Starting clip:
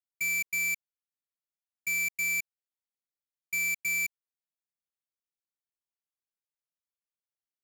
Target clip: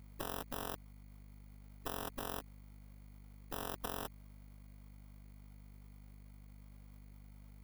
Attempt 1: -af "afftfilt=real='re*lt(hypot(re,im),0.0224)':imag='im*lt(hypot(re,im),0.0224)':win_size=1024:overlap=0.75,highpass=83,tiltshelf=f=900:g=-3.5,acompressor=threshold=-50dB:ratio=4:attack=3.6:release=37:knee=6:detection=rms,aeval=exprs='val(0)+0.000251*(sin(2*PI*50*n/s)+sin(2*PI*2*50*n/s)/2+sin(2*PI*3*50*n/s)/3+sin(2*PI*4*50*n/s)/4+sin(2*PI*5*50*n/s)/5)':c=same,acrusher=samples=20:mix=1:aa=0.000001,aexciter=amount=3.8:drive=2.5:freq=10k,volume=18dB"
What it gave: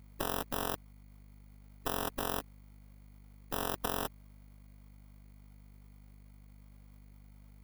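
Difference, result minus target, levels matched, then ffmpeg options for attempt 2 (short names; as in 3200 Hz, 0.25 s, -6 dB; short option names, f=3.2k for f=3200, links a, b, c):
compressor: peak gain reduction -7 dB
-af "afftfilt=real='re*lt(hypot(re,im),0.0224)':imag='im*lt(hypot(re,im),0.0224)':win_size=1024:overlap=0.75,highpass=83,tiltshelf=f=900:g=-3.5,acompressor=threshold=-59.5dB:ratio=4:attack=3.6:release=37:knee=6:detection=rms,aeval=exprs='val(0)+0.000251*(sin(2*PI*50*n/s)+sin(2*PI*2*50*n/s)/2+sin(2*PI*3*50*n/s)/3+sin(2*PI*4*50*n/s)/4+sin(2*PI*5*50*n/s)/5)':c=same,acrusher=samples=20:mix=1:aa=0.000001,aexciter=amount=3.8:drive=2.5:freq=10k,volume=18dB"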